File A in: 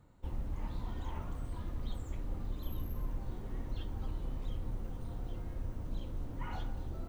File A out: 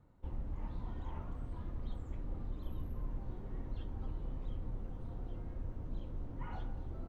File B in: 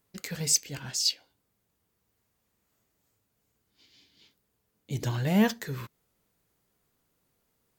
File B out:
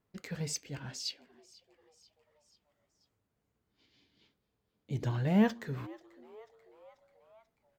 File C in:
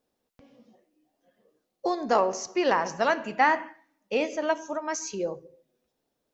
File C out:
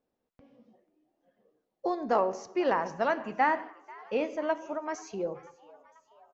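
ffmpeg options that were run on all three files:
-filter_complex "[0:a]lowpass=frequency=1700:poles=1,asplit=5[link_01][link_02][link_03][link_04][link_05];[link_02]adelay=488,afreqshift=110,volume=-22.5dB[link_06];[link_03]adelay=976,afreqshift=220,volume=-27.2dB[link_07];[link_04]adelay=1464,afreqshift=330,volume=-32dB[link_08];[link_05]adelay=1952,afreqshift=440,volume=-36.7dB[link_09];[link_01][link_06][link_07][link_08][link_09]amix=inputs=5:normalize=0,volume=-2.5dB"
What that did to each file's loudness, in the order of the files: −2.5, −6.0, −3.5 LU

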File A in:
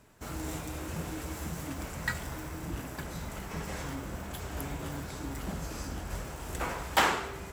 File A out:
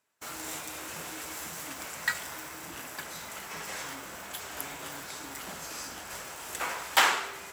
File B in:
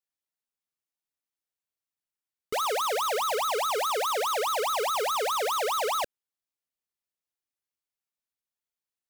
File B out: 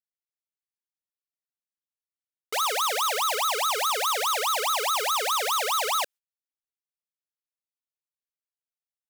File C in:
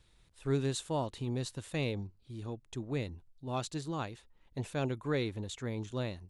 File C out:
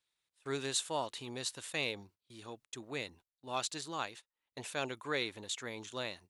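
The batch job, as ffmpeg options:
-af "agate=range=-18dB:threshold=-49dB:ratio=16:detection=peak,highpass=frequency=1400:poles=1,volume=6dB"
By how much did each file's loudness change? +2.0, +2.5, −1.5 LU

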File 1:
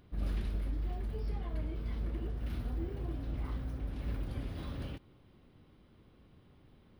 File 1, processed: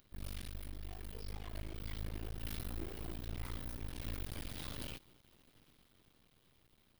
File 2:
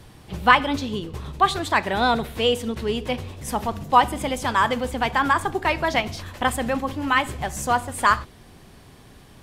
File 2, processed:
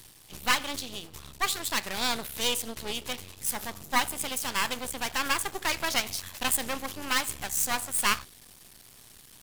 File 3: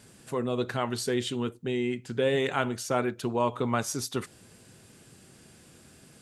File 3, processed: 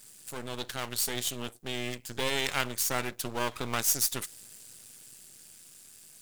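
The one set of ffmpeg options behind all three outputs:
-af "aeval=exprs='max(val(0),0)':channel_layout=same,crystalizer=i=7.5:c=0,dynaudnorm=framelen=170:gausssize=17:maxgain=5dB,volume=-8dB"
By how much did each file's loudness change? −6.5, −6.5, −1.0 LU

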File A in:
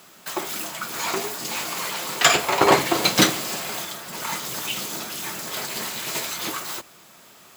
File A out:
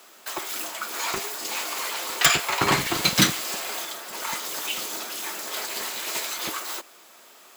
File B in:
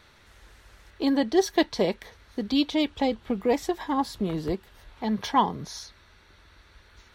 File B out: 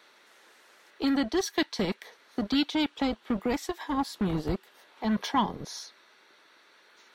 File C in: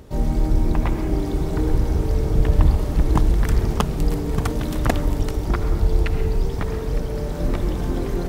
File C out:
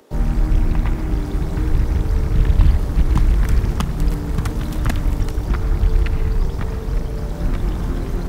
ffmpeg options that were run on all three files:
-filter_complex "[0:a]lowshelf=frequency=310:gain=3.5,acrossover=split=280|1000[link_01][link_02][link_03];[link_01]acrusher=bits=4:mix=0:aa=0.5[link_04];[link_02]acompressor=threshold=-35dB:ratio=6[link_05];[link_03]aeval=exprs='(mod(1.58*val(0)+1,2)-1)/1.58':channel_layout=same[link_06];[link_04][link_05][link_06]amix=inputs=3:normalize=0,volume=-1dB"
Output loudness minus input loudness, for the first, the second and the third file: −2.0, −3.5, +1.5 LU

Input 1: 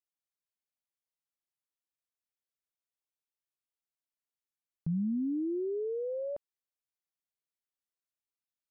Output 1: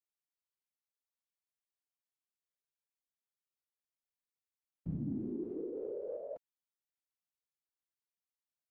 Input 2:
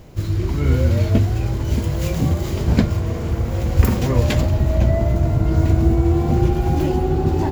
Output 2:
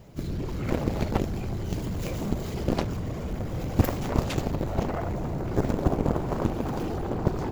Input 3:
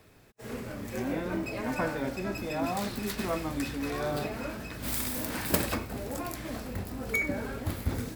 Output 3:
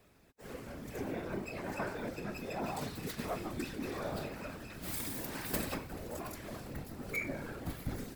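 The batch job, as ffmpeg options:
-af "afftfilt=real='hypot(re,im)*cos(2*PI*random(0))':imag='hypot(re,im)*sin(2*PI*random(1))':win_size=512:overlap=0.75,aeval=exprs='0.531*(cos(1*acos(clip(val(0)/0.531,-1,1)))-cos(1*PI/2))+0.168*(cos(7*acos(clip(val(0)/0.531,-1,1)))-cos(7*PI/2))':channel_layout=same,volume=-2.5dB"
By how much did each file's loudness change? −7.0, −10.5, −7.5 LU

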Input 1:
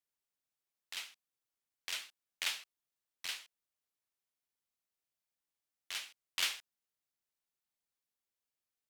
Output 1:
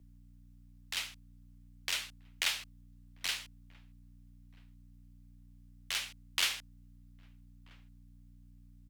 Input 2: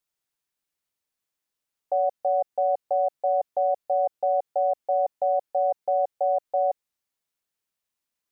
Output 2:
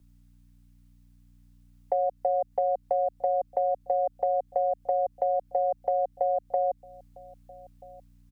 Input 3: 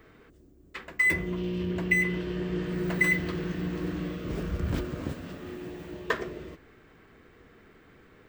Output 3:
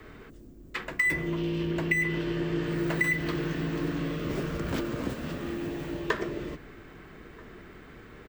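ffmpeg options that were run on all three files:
-filter_complex "[0:a]acrossover=split=100|240[link_01][link_02][link_03];[link_01]acompressor=threshold=-51dB:ratio=4[link_04];[link_02]acompressor=threshold=-41dB:ratio=4[link_05];[link_03]acompressor=threshold=-26dB:ratio=4[link_06];[link_04][link_05][link_06]amix=inputs=3:normalize=0,aeval=exprs='val(0)+0.000708*(sin(2*PI*60*n/s)+sin(2*PI*2*60*n/s)/2+sin(2*PI*3*60*n/s)/3+sin(2*PI*4*60*n/s)/4+sin(2*PI*5*60*n/s)/5)':channel_layout=same,asplit=2[link_07][link_08];[link_08]adelay=1283,volume=-26dB,highshelf=frequency=4000:gain=-28.9[link_09];[link_07][link_09]amix=inputs=2:normalize=0,asplit=2[link_10][link_11];[link_11]acompressor=threshold=-38dB:ratio=6,volume=2dB[link_12];[link_10][link_12]amix=inputs=2:normalize=0,afreqshift=-17"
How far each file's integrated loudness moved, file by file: +4.5, −2.5, −0.5 LU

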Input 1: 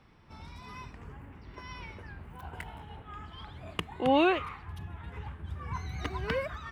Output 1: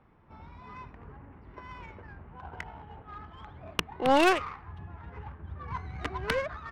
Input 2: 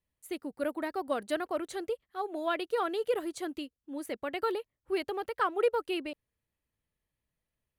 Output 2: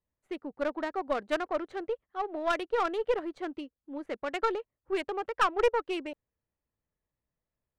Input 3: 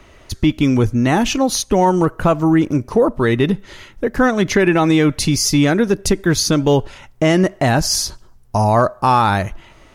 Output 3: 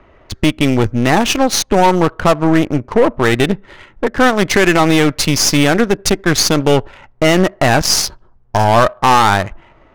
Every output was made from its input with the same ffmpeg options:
-af "lowshelf=frequency=470:gain=-7.5,aeval=exprs='0.668*(cos(1*acos(clip(val(0)/0.668,-1,1)))-cos(1*PI/2))+0.211*(cos(5*acos(clip(val(0)/0.668,-1,1)))-cos(5*PI/2))+0.119*(cos(7*acos(clip(val(0)/0.668,-1,1)))-cos(7*PI/2))+0.0841*(cos(8*acos(clip(val(0)/0.668,-1,1)))-cos(8*PI/2))':channel_layout=same,adynamicsmooth=sensitivity=3:basefreq=1300,volume=2.5dB"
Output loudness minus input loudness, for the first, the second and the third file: +4.0, +2.0, +2.5 LU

